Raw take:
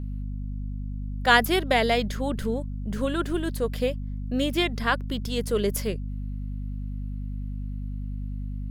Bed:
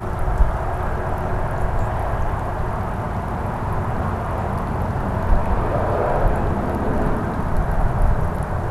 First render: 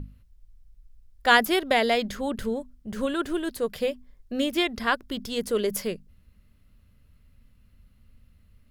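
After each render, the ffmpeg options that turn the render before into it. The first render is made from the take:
-af "bandreject=f=50:t=h:w=6,bandreject=f=100:t=h:w=6,bandreject=f=150:t=h:w=6,bandreject=f=200:t=h:w=6,bandreject=f=250:t=h:w=6"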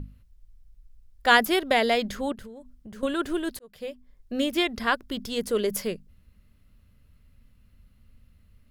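-filter_complex "[0:a]asettb=1/sr,asplit=3[a][b][c];[a]atrim=end=2.324[d];[b]atrim=start=2.32:end=3.03,asetpts=PTS-STARTPTS,afade=t=in:d=0.004:c=qsin,afade=t=out:st=0.706:d=0.004:c=qsin,acompressor=threshold=-39dB:ratio=12:attack=3.2:release=140:knee=1:detection=peak[e];[c]atrim=start=3.026[f];[d][e]acrossfade=d=0.004:c1=hsin:c2=qsin[g];[g][f]acrossfade=d=0.004:c1=qsin:c2=hsin,asplit=2[h][i];[h]atrim=end=3.59,asetpts=PTS-STARTPTS,afade=t=out:st=3.586:d=0.004:c=hsin[j];[i]atrim=start=3.59,asetpts=PTS-STARTPTS,afade=t=in:d=0.75[k];[j][k]concat=n=2:v=0:a=1"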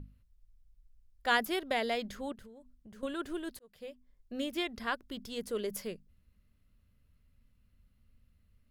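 -af "volume=-10dB"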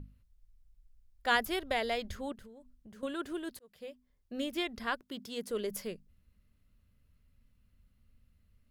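-filter_complex "[0:a]asettb=1/sr,asplit=3[a][b][c];[a]atrim=end=1.354[d];[b]atrim=start=1.35:end=2.16,asetpts=PTS-STARTPTS,afade=t=in:d=0.004:c=qsin,afade=t=out:st=0.806:d=0.004:c=qsin,lowshelf=f=120:t=q:w=3:g=9.5[e];[c]atrim=start=2.156[f];[d][e]acrossfade=d=0.004:c1=hsin:c2=qsin[g];[g][f]acrossfade=d=0.004:c1=qsin:c2=hsin,asettb=1/sr,asplit=3[h][i][j];[h]atrim=end=2.904[k];[i]atrim=start=2.9:end=4.38,asetpts=PTS-STARTPTS,afade=t=in:d=0.004:c=qsin,afade=t=out:st=1.476:d=0.004:c=qsin,highpass=f=60:p=1[l];[j]atrim=start=4.376[m];[k][l]acrossfade=d=0.004:c1=hsin:c2=qsin[n];[n][m]acrossfade=d=0.004:c1=qsin:c2=hsin,asettb=1/sr,asplit=3[o][p][q];[o]atrim=end=5.014[r];[p]atrim=start=5.01:end=5.5,asetpts=PTS-STARTPTS,afade=t=in:d=0.004:c=qsin,afade=t=out:st=0.486:d=0.004:c=qsin,highpass=140[s];[q]atrim=start=5.496[t];[r][s]acrossfade=d=0.004:c1=hsin:c2=qsin[u];[u][t]acrossfade=d=0.004:c1=qsin:c2=hsin"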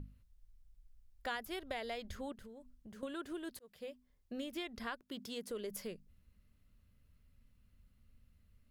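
-af "acompressor=threshold=-41dB:ratio=3"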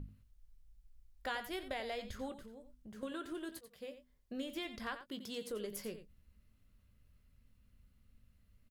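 -filter_complex "[0:a]asplit=2[a][b];[b]adelay=19,volume=-11dB[c];[a][c]amix=inputs=2:normalize=0,asplit=2[d][e];[e]aecho=0:1:89:0.266[f];[d][f]amix=inputs=2:normalize=0"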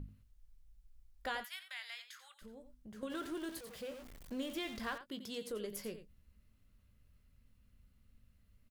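-filter_complex "[0:a]asplit=3[a][b][c];[a]afade=t=out:st=1.43:d=0.02[d];[b]highpass=f=1.3k:w=0.5412,highpass=f=1.3k:w=1.3066,afade=t=in:st=1.43:d=0.02,afade=t=out:st=2.41:d=0.02[e];[c]afade=t=in:st=2.41:d=0.02[f];[d][e][f]amix=inputs=3:normalize=0,asettb=1/sr,asplit=3[g][h][i];[g]atrim=end=3.104[j];[h]atrim=start=3.1:end=4.98,asetpts=PTS-STARTPTS,afade=t=in:d=0.004:c=qsin,afade=t=out:st=1.876:d=0.004:c=qsin,aeval=exprs='val(0)+0.5*0.00398*sgn(val(0))':c=same[k];[i]atrim=start=4.976[l];[j][k]acrossfade=d=0.004:c1=hsin:c2=qsin[m];[m][l]acrossfade=d=0.004:c1=qsin:c2=hsin"

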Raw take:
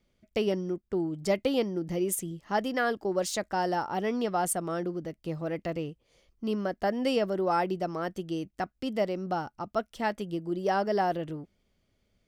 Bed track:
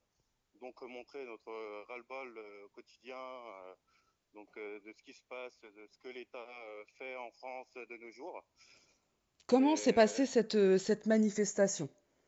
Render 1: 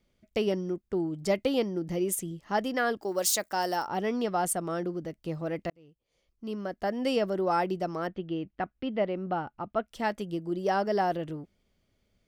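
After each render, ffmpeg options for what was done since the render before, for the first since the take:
-filter_complex "[0:a]asettb=1/sr,asplit=3[a][b][c];[a]atrim=end=3.024[d];[b]atrim=start=3.02:end=3.87,asetpts=PTS-STARTPTS,afade=t=in:d=0.004:c=qsin,afade=t=out:st=0.846:d=0.004:c=qsin,aemphasis=mode=production:type=bsi[e];[c]atrim=start=3.866[f];[d][e]acrossfade=d=0.004:c1=hsin:c2=qsin[g];[g][f]acrossfade=d=0.004:c1=qsin:c2=hsin,asettb=1/sr,asplit=3[h][i][j];[h]atrim=end=8.074[k];[i]atrim=start=8.07:end=9.88,asetpts=PTS-STARTPTS,afade=t=in:d=0.004:c=qsin,afade=t=out:st=1.806:d=0.004:c=qsin,lowpass=f=3.3k:w=0.5412,lowpass=f=3.3k:w=1.3066[l];[j]atrim=start=9.876[m];[k][l]acrossfade=d=0.004:c1=hsin:c2=qsin[n];[n][m]acrossfade=d=0.004:c1=qsin:c2=hsin,asplit=2[o][p];[o]atrim=end=5.7,asetpts=PTS-STARTPTS,afade=t=out:st=5.696:d=0.004:c=hsin[q];[p]atrim=start=5.7,asetpts=PTS-STARTPTS,afade=t=in:d=1.5[r];[q][r]concat=n=2:v=0:a=1"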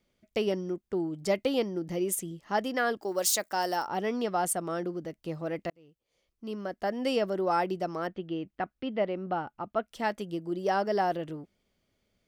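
-af "lowshelf=f=130:g=-7.5"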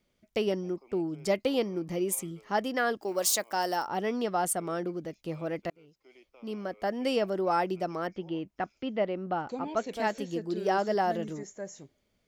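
-filter_complex "[1:a]volume=-10dB[a];[0:a][a]amix=inputs=2:normalize=0"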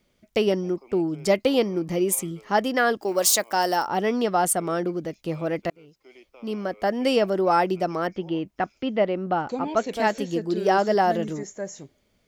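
-af "volume=7dB"

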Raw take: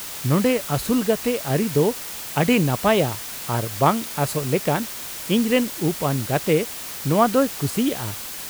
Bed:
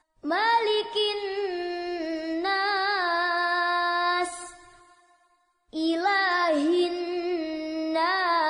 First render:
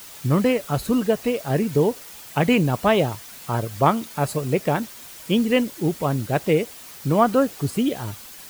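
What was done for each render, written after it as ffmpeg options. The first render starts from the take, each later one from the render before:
-af "afftdn=nr=9:nf=-33"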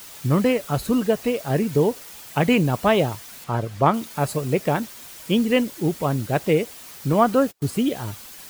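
-filter_complex "[0:a]asettb=1/sr,asplit=3[a][b][c];[a]atrim=end=3.444[d];[b]atrim=start=3.44:end=3.94,asetpts=PTS-STARTPTS,afade=t=in:d=0.004:c=qsin,afade=t=out:st=0.496:d=0.004:c=qsin,lowpass=f=3.6k:p=1[e];[c]atrim=start=3.936[f];[d][e]acrossfade=d=0.004:c1=hsin:c2=qsin[g];[g][f]acrossfade=d=0.004:c1=qsin:c2=hsin,asettb=1/sr,asplit=3[h][i][j];[h]atrim=end=7.134[k];[i]atrim=start=7.13:end=7.65,asetpts=PTS-STARTPTS,afade=t=in:d=0.004:c=qsin,afade=t=out:st=0.516:d=0.004:c=qsin,agate=range=-33dB:threshold=-34dB:ratio=16:release=100:detection=peak[l];[j]atrim=start=7.646[m];[k][l]acrossfade=d=0.004:c1=hsin:c2=qsin[n];[n][m]acrossfade=d=0.004:c1=qsin:c2=hsin"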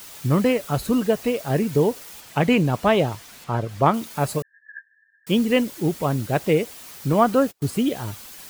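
-filter_complex "[0:a]asettb=1/sr,asplit=3[a][b][c];[a]atrim=end=2.204[d];[b]atrim=start=2.2:end=3.69,asetpts=PTS-STARTPTS,afade=t=in:d=0.004:c=qsin,afade=t=out:st=1.486:d=0.004:c=qsin,highshelf=f=8.6k:g=-7.5[e];[c]atrim=start=3.686[f];[d][e]acrossfade=d=0.004:c1=hsin:c2=qsin[g];[g][f]acrossfade=d=0.004:c1=qsin:c2=hsin,asettb=1/sr,asplit=3[h][i][j];[h]atrim=end=4.424[k];[i]atrim=start=4.42:end=5.27,asetpts=PTS-STARTPTS,afade=t=in:d=0.004:c=qsin,afade=t=out:st=0.846:d=0.004:c=qsin,asuperpass=centerf=1700:order=20:qfactor=8[l];[j]atrim=start=5.266[m];[k][l]acrossfade=d=0.004:c1=hsin:c2=qsin[n];[n][m]acrossfade=d=0.004:c1=qsin:c2=hsin"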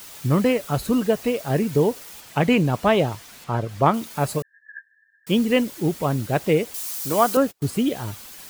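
-filter_complex "[0:a]asettb=1/sr,asplit=3[a][b][c];[a]atrim=end=6.744[d];[b]atrim=start=6.74:end=7.37,asetpts=PTS-STARTPTS,afade=t=in:d=0.004:c=qsin,afade=t=out:st=0.626:d=0.004:c=qsin,bass=f=250:g=-12,treble=f=4k:g=12[e];[c]atrim=start=7.366[f];[d][e]acrossfade=d=0.004:c1=hsin:c2=qsin[g];[g][f]acrossfade=d=0.004:c1=qsin:c2=hsin"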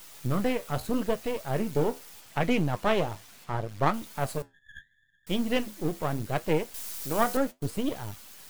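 -af "aeval=exprs='if(lt(val(0),0),0.251*val(0),val(0))':c=same,flanger=delay=6.2:depth=7.2:regen=-70:speed=0.76:shape=sinusoidal"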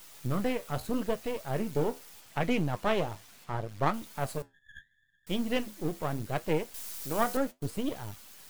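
-af "volume=-3dB"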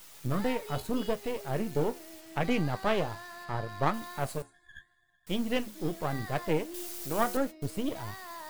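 -filter_complex "[1:a]volume=-20.5dB[a];[0:a][a]amix=inputs=2:normalize=0"

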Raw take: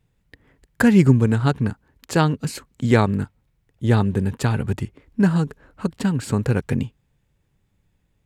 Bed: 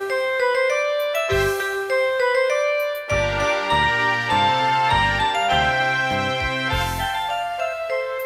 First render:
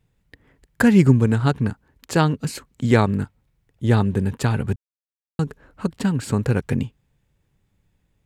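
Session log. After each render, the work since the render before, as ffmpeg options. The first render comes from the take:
-filter_complex "[0:a]asplit=3[a][b][c];[a]atrim=end=4.76,asetpts=PTS-STARTPTS,afade=t=out:st=4.756:d=0.004:c=hsin[d];[b]atrim=start=4.76:end=5.39,asetpts=PTS-STARTPTS,volume=0[e];[c]atrim=start=5.39,asetpts=PTS-STARTPTS,afade=t=in:d=0.004:c=hsin[f];[d][e][f]concat=n=3:v=0:a=1"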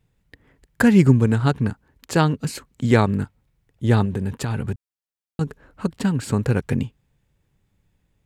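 -filter_complex "[0:a]asettb=1/sr,asplit=3[a][b][c];[a]atrim=end=4.054[d];[b]atrim=start=4.05:end=5.41,asetpts=PTS-STARTPTS,afade=t=in:d=0.004:c=qsin,afade=t=out:st=1.356:d=0.004:c=qsin,acompressor=threshold=-20dB:ratio=6:attack=3.2:release=140:knee=1:detection=peak[e];[c]atrim=start=5.406[f];[d][e]acrossfade=d=0.004:c1=hsin:c2=qsin[g];[g][f]acrossfade=d=0.004:c1=qsin:c2=hsin"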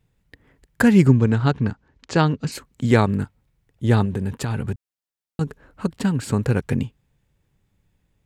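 -filter_complex "[0:a]asettb=1/sr,asplit=3[a][b][c];[a]atrim=end=1.084[d];[b]atrim=start=1.08:end=2.52,asetpts=PTS-STARTPTS,afade=t=in:d=0.004:c=qsin,afade=t=out:st=1.436:d=0.004:c=qsin,lowpass=f=6.6k:w=0.5412,lowpass=f=6.6k:w=1.3066[e];[c]atrim=start=2.516[f];[d][e]acrossfade=d=0.004:c1=hsin:c2=qsin[g];[g][f]acrossfade=d=0.004:c1=qsin:c2=hsin"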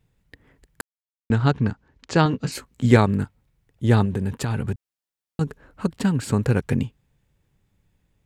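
-filter_complex "[0:a]asettb=1/sr,asplit=3[a][b][c];[a]atrim=end=2.244[d];[b]atrim=start=2.24:end=2.97,asetpts=PTS-STARTPTS,afade=t=in:d=0.004:c=qsin,afade=t=out:st=0.726:d=0.004:c=qsin,asplit=2[e][f];[f]adelay=16,volume=-6.5dB[g];[e][g]amix=inputs=2:normalize=0,atrim=end_sample=32193[h];[c]atrim=start=2.966[i];[d][h]acrossfade=d=0.004:c1=hsin:c2=qsin[j];[j][i]acrossfade=d=0.004:c1=qsin:c2=hsin,asplit=3[k][l][m];[k]atrim=end=0.81,asetpts=PTS-STARTPTS,afade=t=out:st=0.806:d=0.004:c=hsin[n];[l]atrim=start=0.81:end=1.3,asetpts=PTS-STARTPTS,volume=0[o];[m]atrim=start=1.3,asetpts=PTS-STARTPTS,afade=t=in:d=0.004:c=hsin[p];[n][o][p]concat=n=3:v=0:a=1"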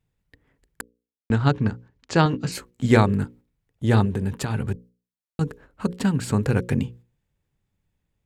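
-af "agate=range=-8dB:threshold=-45dB:ratio=16:detection=peak,bandreject=f=60:t=h:w=6,bandreject=f=120:t=h:w=6,bandreject=f=180:t=h:w=6,bandreject=f=240:t=h:w=6,bandreject=f=300:t=h:w=6,bandreject=f=360:t=h:w=6,bandreject=f=420:t=h:w=6,bandreject=f=480:t=h:w=6,bandreject=f=540:t=h:w=6"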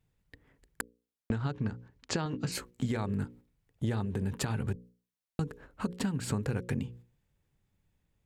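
-af "alimiter=limit=-12dB:level=0:latency=1:release=278,acompressor=threshold=-29dB:ratio=6"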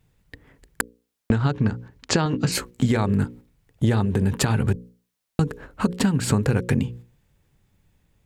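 -af "volume=11.5dB"

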